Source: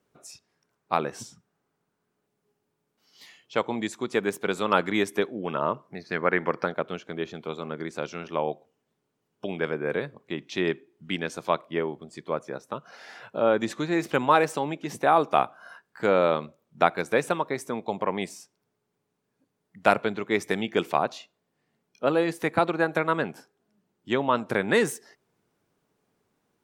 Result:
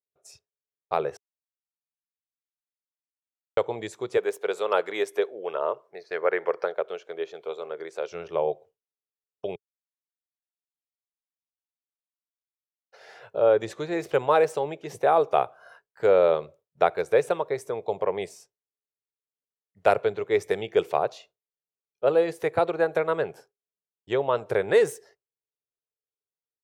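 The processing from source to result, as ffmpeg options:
-filter_complex "[0:a]asettb=1/sr,asplit=3[a][b][c];[a]atrim=end=4.174[d];[b]atrim=start=4.17:end=8.12,asetpts=PTS-STARTPTS,afade=t=in:d=0.004:c=qsin,afade=t=out:st=3.946:d=0.004:c=qsin,highpass=380[e];[c]atrim=start=8.116[f];[d][e]acrossfade=d=0.004:c1=hsin:c2=qsin[g];[g][f]acrossfade=d=0.004:c1=qsin:c2=hsin,asplit=5[h][i][j][k][l];[h]atrim=end=1.17,asetpts=PTS-STARTPTS,afade=t=out:st=1.166:d=0.004:c=hsin[m];[i]atrim=start=1.17:end=3.57,asetpts=PTS-STARTPTS,volume=0[n];[j]atrim=start=3.57:end=9.56,asetpts=PTS-STARTPTS,afade=t=in:d=0.004:c=hsin,afade=t=out:st=5.986:d=0.004:c=hsin[o];[k]atrim=start=9.56:end=12.92,asetpts=PTS-STARTPTS,volume=0[p];[l]atrim=start=12.92,asetpts=PTS-STARTPTS,afade=t=in:d=0.004:c=hsin[q];[m][n][o][p][q]concat=n=5:v=0:a=1,agate=range=-33dB:threshold=-45dB:ratio=3:detection=peak,firequalizer=gain_entry='entry(100,0);entry(240,-19);entry(420,3);entry(1000,-7)':delay=0.05:min_phase=1,volume=2.5dB"

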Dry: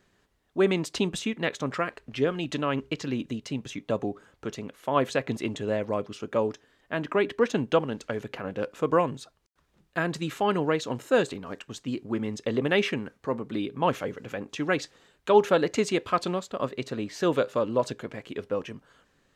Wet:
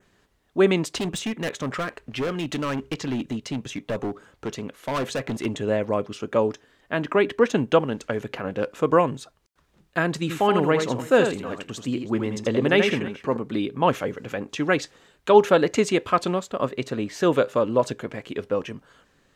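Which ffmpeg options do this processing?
-filter_complex "[0:a]asettb=1/sr,asplit=3[a][b][c];[a]atrim=end=0.974[d];[b]atrim=start=0.97:end=5.46,asetpts=PTS-STARTPTS,afade=t=in:d=0.004:c=qsin,afade=t=out:st=4.486:d=0.004:c=qsin,volume=27.5dB,asoftclip=hard,volume=-27.5dB[e];[c]atrim=start=5.456[f];[d][e]acrossfade=d=0.004:c1=hsin:c2=qsin[g];[g][f]acrossfade=d=0.004:c1=qsin:c2=hsin,asettb=1/sr,asplit=3[h][i][j];[h]atrim=end=10.194[k];[i]atrim=start=10.19:end=13.37,asetpts=PTS-STARTPTS,afade=t=in:d=0.004:c=qsin,afade=t=out:st=3.176:d=0.004:c=qsin,aecho=1:1:81|320:0.473|0.106,atrim=end_sample=140238[l];[j]atrim=start=13.366[m];[k][l]acrossfade=d=0.004:c1=hsin:c2=qsin[n];[n][m]acrossfade=d=0.004:c1=qsin:c2=hsin,adynamicequalizer=threshold=0.002:dfrequency=4400:dqfactor=2:tfrequency=4400:tqfactor=2:attack=5:release=100:ratio=0.375:range=2:mode=cutabove:tftype=bell,volume=4.5dB"

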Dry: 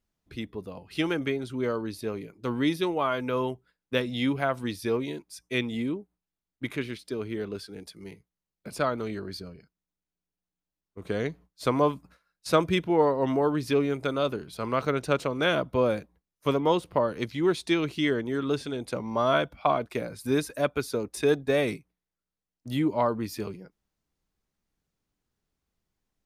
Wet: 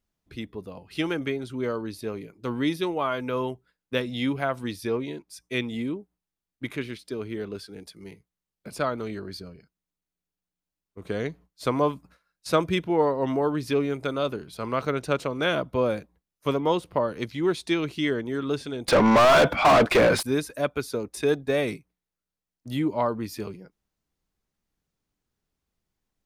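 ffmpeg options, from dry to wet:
-filter_complex "[0:a]asettb=1/sr,asplit=3[a][b][c];[a]atrim=end=4.874[d];[b]atrim=start=4.87:end=5.28,asetpts=PTS-STARTPTS,afade=t=in:d=0.004:c=qsin,afade=t=out:st=0.406:d=0.004:c=qsin,highshelf=f=6.7k:g=-9.5[e];[c]atrim=start=5.276[f];[d][e]acrossfade=d=0.004:c1=hsin:c2=qsin[g];[g][f]acrossfade=d=0.004:c1=qsin:c2=hsin,asettb=1/sr,asplit=3[h][i][j];[h]atrim=end=18.884[k];[i]atrim=start=18.88:end=20.23,asetpts=PTS-STARTPTS,afade=t=in:d=0.004:c=qsin,afade=t=out:st=1.346:d=0.004:c=qsin,asplit=2[l][m];[m]highpass=f=720:p=1,volume=38dB,asoftclip=type=tanh:threshold=-9dB[n];[l][n]amix=inputs=2:normalize=0,lowpass=f=2k:p=1,volume=-6dB[o];[j]atrim=start=20.226[p];[k][o]acrossfade=d=0.004:c1=hsin:c2=qsin[q];[q][p]acrossfade=d=0.004:c1=qsin:c2=hsin"

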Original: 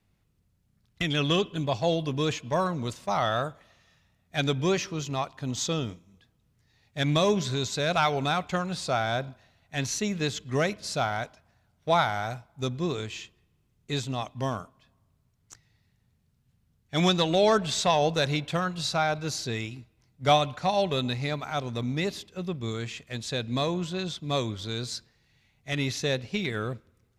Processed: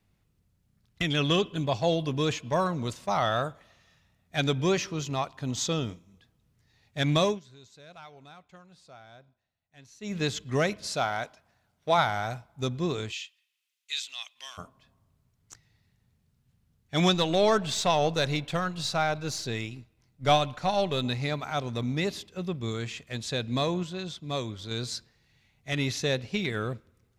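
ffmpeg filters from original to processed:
-filter_complex "[0:a]asettb=1/sr,asplit=3[a][b][c];[a]atrim=end=10.884[d];[b]atrim=start=10.88:end=11.98,asetpts=PTS-STARTPTS,afade=t=in:d=0.004:c=qsin,afade=t=out:st=1.096:d=0.004:c=qsin,lowshelf=f=150:g=-9.5[e];[c]atrim=start=11.976[f];[d][e]acrossfade=d=0.004:c1=hsin:c2=qsin[g];[g][f]acrossfade=d=0.004:c1=qsin:c2=hsin,asplit=3[h][i][j];[h]afade=t=out:st=13.11:d=0.02[k];[i]highpass=f=2.7k:t=q:w=1.5,afade=t=in:st=13.11:d=0.02,afade=t=out:st=14.57:d=0.02[l];[j]afade=t=in:st=14.57:d=0.02[m];[k][l][m]amix=inputs=3:normalize=0,asettb=1/sr,asplit=3[n][o][p];[n]atrim=end=17.144[q];[o]atrim=start=17.14:end=21.04,asetpts=PTS-STARTPTS,afade=t=in:d=0.004:c=qsin,afade=t=out:st=3.896:d=0.004:c=qsin,aeval=exprs='if(lt(val(0),0),0.708*val(0),val(0))':c=same[r];[p]atrim=start=21.036[s];[q][r]acrossfade=d=0.004:c1=hsin:c2=qsin[t];[t][s]acrossfade=d=0.004:c1=qsin:c2=hsin,asplit=5[u][v][w][x][y];[u]atrim=end=7.4,asetpts=PTS-STARTPTS,afade=t=out:st=7.23:d=0.17:silence=0.0668344[z];[v]atrim=start=7.4:end=10,asetpts=PTS-STARTPTS,volume=-23.5dB[aa];[w]atrim=start=10:end=23.832,asetpts=PTS-STARTPTS,afade=t=in:d=0.17:silence=0.0668344[ab];[x]atrim=start=23.828:end=24.712,asetpts=PTS-STARTPTS,volume=-4dB[ac];[y]atrim=start=24.708[ad];[z][aa][ab]concat=n=3:v=0:a=1[ae];[ae][ac]acrossfade=d=0.004:c1=hsin:c2=hsin[af];[af][ad]acrossfade=d=0.004:c1=hsin:c2=hsin"

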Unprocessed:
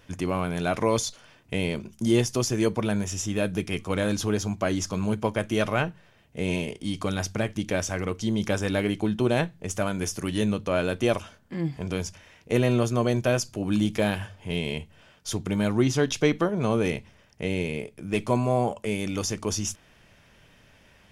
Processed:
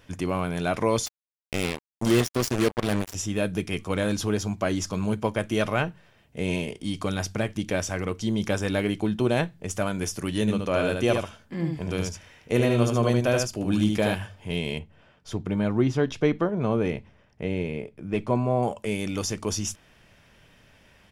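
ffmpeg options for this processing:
-filter_complex "[0:a]asettb=1/sr,asplit=3[a][b][c];[a]atrim=end=1.064[d];[b]atrim=start=1.06:end=3.15,asetpts=PTS-STARTPTS,afade=t=in:d=0.004:c=qsin,afade=t=out:st=2.086:d=0.004:c=qsin,acrusher=bits=3:mix=0:aa=0.5[e];[c]atrim=start=3.146[f];[d][e]acrossfade=d=0.004:c1=hsin:c2=qsin[g];[g][f]acrossfade=d=0.004:c1=qsin:c2=hsin,asplit=3[h][i][j];[h]afade=t=out:st=10.47:d=0.02[k];[i]aecho=1:1:75:0.596,afade=t=in:st=10.47:d=0.02,afade=t=out:st=14.13:d=0.02[l];[j]afade=t=in:st=14.13:d=0.02[m];[k][l][m]amix=inputs=3:normalize=0,asettb=1/sr,asplit=3[n][o][p];[n]atrim=end=14.794[q];[o]atrim=start=14.79:end=18.63,asetpts=PTS-STARTPTS,afade=t=in:d=0.004:c=qsin,afade=t=out:st=3.836:d=0.004:c=qsin,lowpass=f=1.7k:p=1[r];[p]atrim=start=18.626[s];[q][r]acrossfade=d=0.004:c1=hsin:c2=qsin[t];[t][s]acrossfade=d=0.004:c1=qsin:c2=hsin,bandreject=f=6.4k:w=25"

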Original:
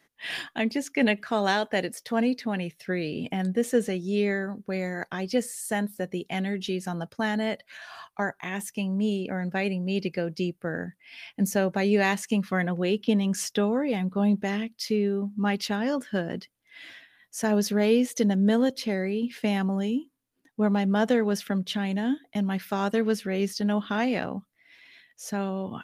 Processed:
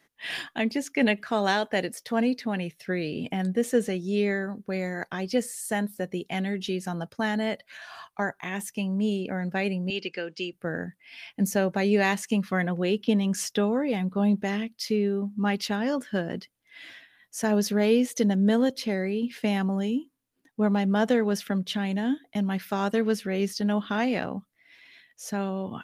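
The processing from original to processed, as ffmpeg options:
-filter_complex "[0:a]asettb=1/sr,asplit=3[a][b][c];[a]atrim=end=9.904[d];[b]atrim=start=9.9:end=10.53,asetpts=PTS-STARTPTS,afade=t=in:d=0.004:c=qsin,afade=t=out:st=0.626:d=0.004:c=qsin,highpass=380,equalizer=f=630:t=q:w=4:g=-10,equalizer=f=1k:t=q:w=4:g=-3,equalizer=f=1.6k:t=q:w=4:g=4,equalizer=f=2.9k:t=q:w=4:g=7,lowpass=f=7.8k:w=0.5412,lowpass=f=7.8k:w=1.3066[e];[c]atrim=start=10.526[f];[d][e]acrossfade=d=0.004:c1=hsin:c2=qsin[g];[g][f]acrossfade=d=0.004:c1=qsin:c2=hsin"

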